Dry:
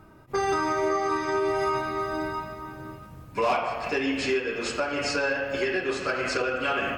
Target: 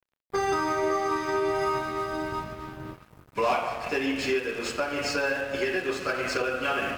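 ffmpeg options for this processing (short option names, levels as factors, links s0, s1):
-filter_complex "[0:a]asettb=1/sr,asplit=3[s0][s1][s2];[s0]atrim=end=2.324[s3];[s1]atrim=start=2.32:end=2.94,asetpts=PTS-STARTPTS,afade=t=in:d=0.004:c=qsin,afade=t=out:st=0.616:d=0.004:c=qsin,lowshelf=f=470:g=5.5[s4];[s2]atrim=start=2.936[s5];[s3][s4]acrossfade=d=0.004:c1=hsin:c2=qsin[s6];[s6][s5]acrossfade=d=0.004:c1=qsin:c2=hsin,aeval=exprs='sgn(val(0))*max(abs(val(0))-0.00631,0)':c=same"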